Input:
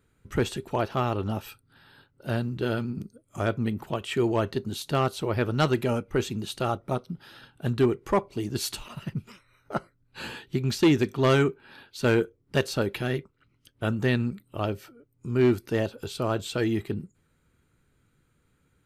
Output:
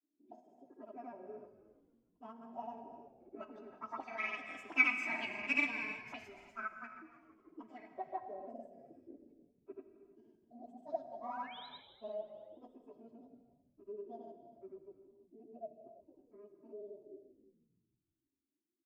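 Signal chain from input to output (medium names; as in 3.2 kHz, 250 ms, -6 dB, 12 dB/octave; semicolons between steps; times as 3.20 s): frequency-domain pitch shifter +11 st; Doppler pass-by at 5.10 s, 7 m/s, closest 2.6 m; peaking EQ 260 Hz +15 dB 1.1 oct; hum notches 50/100/150/200/250 Hz; comb 3.1 ms, depth 82%; auto-wah 340–2300 Hz, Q 6.1, up, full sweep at -27.5 dBFS; painted sound rise, 10.99–11.72 s, 490–4100 Hz -59 dBFS; granulator, pitch spread up and down by 0 st; frequency-shifting echo 160 ms, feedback 64%, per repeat -49 Hz, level -19 dB; gated-style reverb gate 370 ms flat, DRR 7.5 dB; trim +7.5 dB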